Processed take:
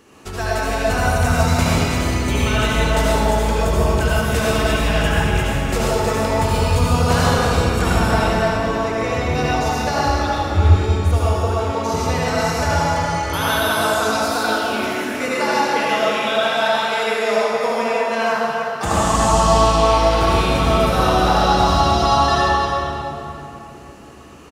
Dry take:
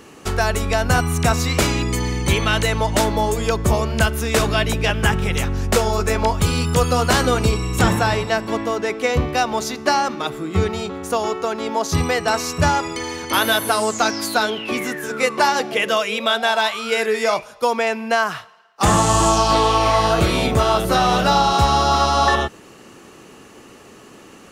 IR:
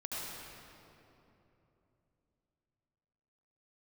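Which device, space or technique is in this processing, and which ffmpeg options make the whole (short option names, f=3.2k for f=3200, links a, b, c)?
cave: -filter_complex "[0:a]aecho=1:1:315:0.376[a];[1:a]atrim=start_sample=2205[b];[a][b]afir=irnorm=-1:irlink=0,asettb=1/sr,asplit=3[c][d][e];[c]atrim=end=10.064[f];[d]atrim=start=10.06:end=11.72,asetpts=PTS-STARTPTS,afade=t=in:d=0.004:c=qsin,afade=t=out:st=1.656:d=0.004:c=qsin,lowshelf=f=110:t=q:w=1.5:g=11[g];[e]atrim=start=11.716[h];[f][g]acrossfade=d=0.004:c1=hsin:c2=qsin[i];[i][h]acrossfade=d=0.004:c1=qsin:c2=hsin,volume=-2.5dB"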